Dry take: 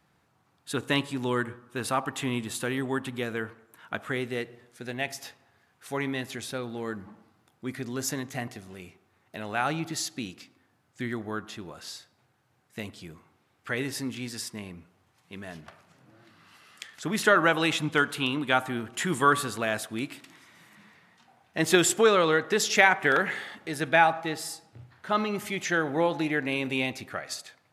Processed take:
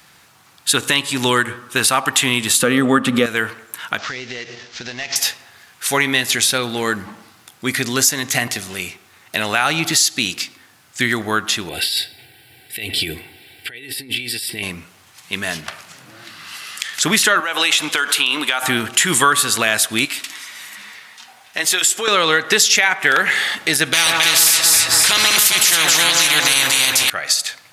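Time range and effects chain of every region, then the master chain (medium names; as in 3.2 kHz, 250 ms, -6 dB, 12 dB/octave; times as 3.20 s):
2.62–3.26 s: treble shelf 12 kHz -8.5 dB + small resonant body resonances 220/490/1200 Hz, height 16 dB, ringing for 25 ms
3.98–5.16 s: CVSD coder 32 kbps + compression 12:1, threshold -41 dBFS
11.69–14.63 s: comb 2.6 ms, depth 53% + compressor with a negative ratio -44 dBFS + static phaser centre 2.8 kHz, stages 4
17.40–18.63 s: high-pass 370 Hz + compression 8:1, threshold -29 dBFS
20.05–22.08 s: bass shelf 280 Hz -10 dB + comb of notches 170 Hz + compression 2:1, threshold -44 dBFS
23.93–27.10 s: comb of notches 200 Hz + echo whose repeats swap between lows and highs 133 ms, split 1.2 kHz, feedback 58%, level -4 dB + spectrum-flattening compressor 4:1
whole clip: tilt shelf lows -8.5 dB, about 1.4 kHz; compression 4:1, threshold -31 dBFS; loudness maximiser +20 dB; trim -1 dB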